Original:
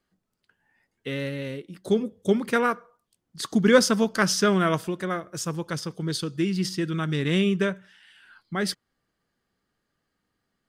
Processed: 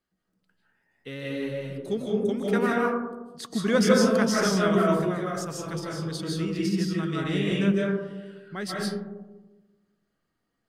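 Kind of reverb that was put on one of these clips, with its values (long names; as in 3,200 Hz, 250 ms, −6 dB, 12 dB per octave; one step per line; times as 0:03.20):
comb and all-pass reverb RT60 1.2 s, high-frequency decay 0.25×, pre-delay 115 ms, DRR −4 dB
level −7 dB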